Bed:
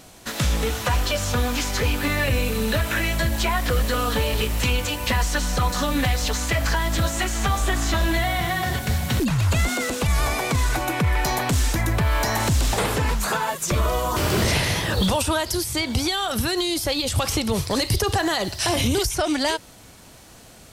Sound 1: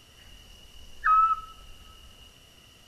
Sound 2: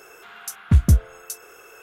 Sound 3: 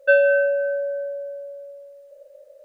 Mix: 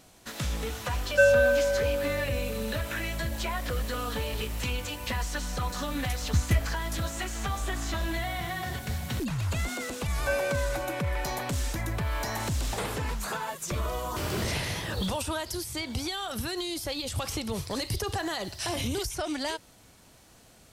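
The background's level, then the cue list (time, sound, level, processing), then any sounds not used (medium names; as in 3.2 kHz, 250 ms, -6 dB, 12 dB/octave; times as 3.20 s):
bed -9.5 dB
1.10 s: add 3 -4 dB
5.62 s: add 2 -10 dB + vibrato 5.9 Hz 92 cents
10.19 s: add 3 -13.5 dB
not used: 1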